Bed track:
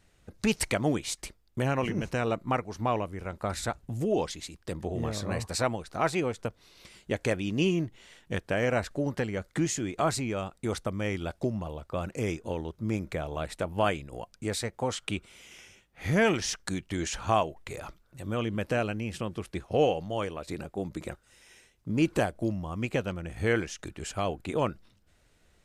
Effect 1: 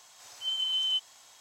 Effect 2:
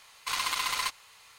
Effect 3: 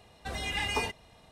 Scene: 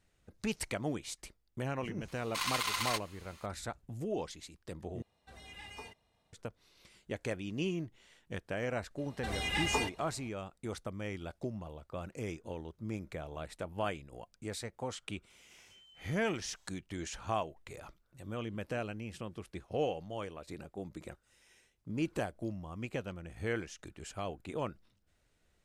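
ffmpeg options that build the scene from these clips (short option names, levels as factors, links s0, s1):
-filter_complex "[3:a]asplit=2[s0][s1];[0:a]volume=0.355[s2];[1:a]acompressor=threshold=0.00631:ratio=6:attack=3.2:release=140:knee=1:detection=peak[s3];[s2]asplit=2[s4][s5];[s4]atrim=end=5.024[s6];[s0]atrim=end=1.31,asetpts=PTS-STARTPTS,volume=0.133[s7];[s5]atrim=start=6.326[s8];[2:a]atrim=end=1.38,asetpts=PTS-STARTPTS,volume=0.631,afade=t=in:d=0.004:c=hsin,afade=t=out:st=1.376:d=0.004:c=hsin,adelay=2080[s9];[s1]atrim=end=1.31,asetpts=PTS-STARTPTS,volume=0.841,afade=t=in:d=0.004:c=hsin,afade=t=out:st=1.306:d=0.004:c=hsin,adelay=396018S[s10];[s3]atrim=end=1.4,asetpts=PTS-STARTPTS,volume=0.15,afade=t=in:d=0.004:c=hsin,afade=t=out:st=1.396:d=0.004:c=hsin,adelay=15300[s11];[s6][s7]acrossfade=d=0.004:c1=hsin:c2=hsin[s12];[s12][s8]acrossfade=d=0.004:c1=hsin:c2=hsin[s13];[s13][s9][s10][s11]amix=inputs=4:normalize=0"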